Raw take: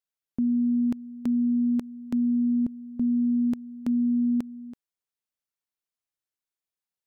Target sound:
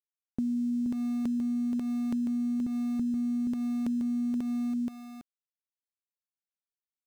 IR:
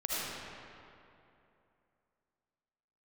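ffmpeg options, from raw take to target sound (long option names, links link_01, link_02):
-af "aeval=exprs='val(0)*gte(abs(val(0)),0.00841)':channel_layout=same,aecho=1:1:476:0.631,acompressor=threshold=-28dB:ratio=6"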